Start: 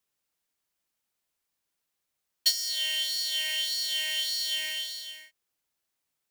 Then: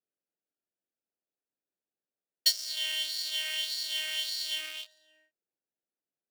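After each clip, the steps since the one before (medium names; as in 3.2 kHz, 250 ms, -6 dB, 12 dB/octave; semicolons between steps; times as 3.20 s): local Wiener filter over 41 samples; high-pass 260 Hz 12 dB/octave; band-stop 6.6 kHz, Q 30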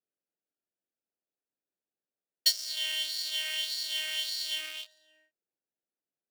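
no audible change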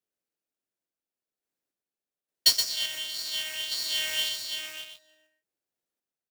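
random-step tremolo; modulation noise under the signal 14 dB; delay 122 ms -6.5 dB; trim +4.5 dB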